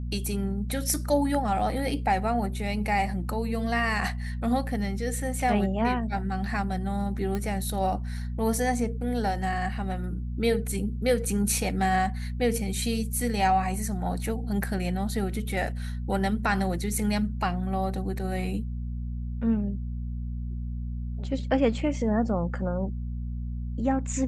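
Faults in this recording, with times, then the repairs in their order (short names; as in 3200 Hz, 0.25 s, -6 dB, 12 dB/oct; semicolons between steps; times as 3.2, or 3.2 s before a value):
hum 60 Hz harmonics 4 -32 dBFS
7.35 pop -18 dBFS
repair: de-click; de-hum 60 Hz, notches 4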